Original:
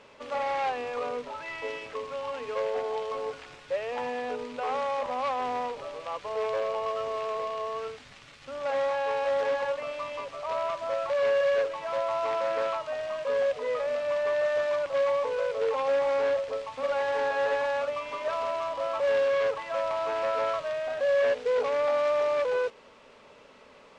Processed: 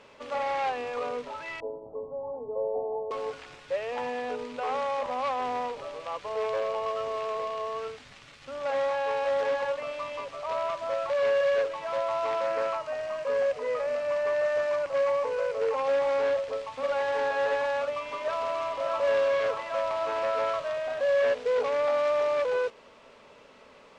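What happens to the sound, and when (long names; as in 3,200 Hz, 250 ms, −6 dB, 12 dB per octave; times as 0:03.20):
0:01.60–0:03.11: Butterworth low-pass 880 Hz 48 dB per octave
0:12.46–0:15.84: parametric band 3,500 Hz −6 dB 0.38 octaves
0:17.88–0:19.01: delay throw 590 ms, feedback 60%, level −7.5 dB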